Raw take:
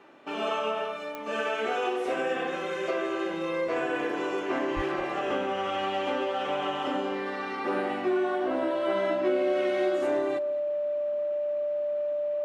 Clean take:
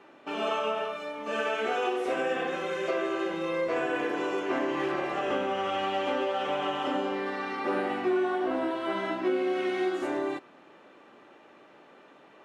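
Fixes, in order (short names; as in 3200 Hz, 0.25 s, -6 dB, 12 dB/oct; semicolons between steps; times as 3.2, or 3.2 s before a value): de-click; notch 590 Hz, Q 30; 4.75–4.87 HPF 140 Hz 24 dB/oct; inverse comb 0.216 s -20 dB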